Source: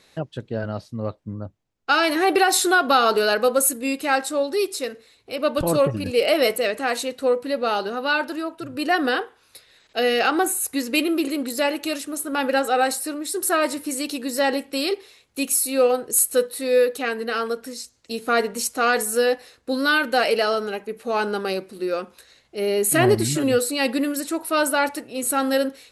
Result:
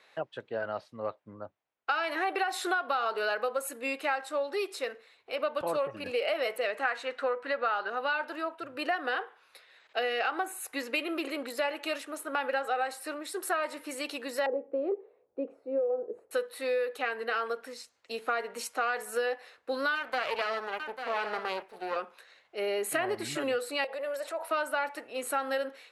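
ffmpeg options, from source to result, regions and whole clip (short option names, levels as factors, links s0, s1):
-filter_complex "[0:a]asettb=1/sr,asplit=3[s0][s1][s2];[s0]atrim=end=6.854[s3];[s1]atrim=start=6.85:end=7.9,asetpts=PTS-STARTPTS,afade=t=in:d=0.004:c=qsin,afade=t=out:st=1.046:d=0.004:c=qsin,lowpass=8000,equalizer=f=1500:t=o:w=0.98:g=10[s4];[s2]atrim=start=7.896[s5];[s3][s4]acrossfade=d=0.004:c1=hsin:c2=qsin[s6];[s6][s5]acrossfade=d=0.004:c1=qsin:c2=hsin,asettb=1/sr,asplit=3[s7][s8][s9];[s7]atrim=end=14.464[s10];[s8]atrim=start=14.46:end=16.31,asetpts=PTS-STARTPTS,afade=t=in:d=0.004:c=qsin,afade=t=out:st=1.846:d=0.004:c=qsin,lowpass=f=480:t=q:w=2.6,acompressor=threshold=0.224:ratio=6:attack=3.2:release=140:knee=1:detection=peak[s11];[s9]atrim=start=16.306[s12];[s10][s11]acrossfade=d=0.004:c1=hsin:c2=qsin[s13];[s13][s12]acrossfade=d=0.004:c1=qsin:c2=hsin,asettb=1/sr,asplit=3[s14][s15][s16];[s14]atrim=end=19.954[s17];[s15]atrim=start=19.95:end=21.96,asetpts=PTS-STARTPTS,afade=t=in:d=0.004:c=qsin,afade=t=out:st=2.006:d=0.004:c=qsin,aeval=exprs='max(val(0),0)':c=same,aecho=1:1:845:0.224,atrim=end_sample=88641[s18];[s16]atrim=start=21.956[s19];[s17][s18]acrossfade=d=0.004:c1=hsin:c2=qsin[s20];[s20][s19]acrossfade=d=0.004:c1=qsin:c2=hsin,asettb=1/sr,asplit=3[s21][s22][s23];[s21]atrim=end=23.844[s24];[s22]atrim=start=23.84:end=24.51,asetpts=PTS-STARTPTS,afade=t=in:d=0.004:c=qsin,afade=t=out:st=0.666:d=0.004:c=qsin,acompressor=threshold=0.0398:ratio=12:attack=3.2:release=140:knee=1:detection=peak,highpass=f=580:t=q:w=3.7[s25];[s23]atrim=start=24.506[s26];[s24][s25]acrossfade=d=0.004:c1=hsin:c2=qsin[s27];[s27][s26]acrossfade=d=0.004:c1=qsin:c2=hsin,highpass=f=170:p=1,acrossover=split=490 3100:gain=0.158 1 0.178[s28][s29][s30];[s28][s29][s30]amix=inputs=3:normalize=0,acompressor=threshold=0.0447:ratio=6"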